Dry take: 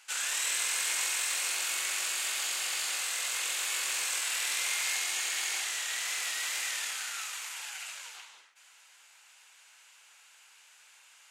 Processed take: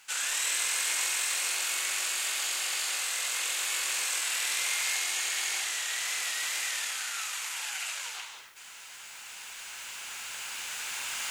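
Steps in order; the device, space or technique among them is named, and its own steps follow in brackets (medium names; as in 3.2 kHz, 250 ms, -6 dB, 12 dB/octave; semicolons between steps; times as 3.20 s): cheap recorder with automatic gain (white noise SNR 35 dB; recorder AGC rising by 5.1 dB/s); trim +1.5 dB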